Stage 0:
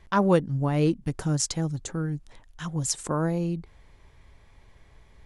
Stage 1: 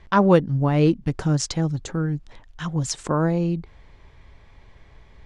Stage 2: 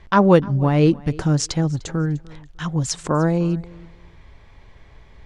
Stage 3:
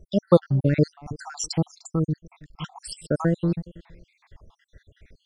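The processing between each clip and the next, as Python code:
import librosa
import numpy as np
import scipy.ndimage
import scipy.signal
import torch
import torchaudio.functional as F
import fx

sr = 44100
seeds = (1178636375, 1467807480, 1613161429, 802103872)

y1 = scipy.signal.sosfilt(scipy.signal.butter(2, 5200.0, 'lowpass', fs=sr, output='sos'), x)
y1 = y1 * 10.0 ** (5.0 / 20.0)
y2 = fx.echo_feedback(y1, sr, ms=300, feedback_pct=21, wet_db=-22)
y2 = y2 * 10.0 ** (2.5 / 20.0)
y3 = fx.spec_dropout(y2, sr, seeds[0], share_pct=70)
y3 = y3 * 10.0 ** (-1.0 / 20.0)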